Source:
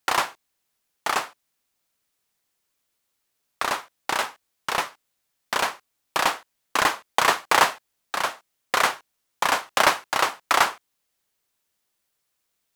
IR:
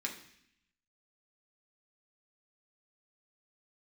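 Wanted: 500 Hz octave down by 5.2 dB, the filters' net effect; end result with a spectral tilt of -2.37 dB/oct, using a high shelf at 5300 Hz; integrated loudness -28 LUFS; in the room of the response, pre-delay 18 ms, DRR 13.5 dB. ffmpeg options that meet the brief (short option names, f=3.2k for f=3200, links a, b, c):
-filter_complex "[0:a]equalizer=f=500:t=o:g=-7,highshelf=f=5.3k:g=-6,asplit=2[a][b];[1:a]atrim=start_sample=2205,adelay=18[c];[b][c]afir=irnorm=-1:irlink=0,volume=-15.5dB[d];[a][d]amix=inputs=2:normalize=0,volume=-2.5dB"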